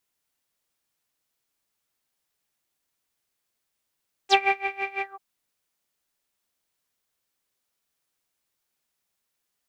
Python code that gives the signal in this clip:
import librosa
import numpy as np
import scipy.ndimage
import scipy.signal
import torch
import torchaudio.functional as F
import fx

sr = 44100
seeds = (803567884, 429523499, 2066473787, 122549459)

y = fx.sub_patch_tremolo(sr, seeds[0], note=79, wave='triangle', wave2='saw', interval_st=0, detune_cents=16, level2_db=-9.0, sub_db=-8, noise_db=-11, kind='lowpass', cutoff_hz=1000.0, q=10.0, env_oct=3.0, env_decay_s=0.06, env_sustain_pct=40, attack_ms=54.0, decay_s=0.22, sustain_db=-13.0, release_s=0.16, note_s=0.73, lfo_hz=6.0, tremolo_db=20.5)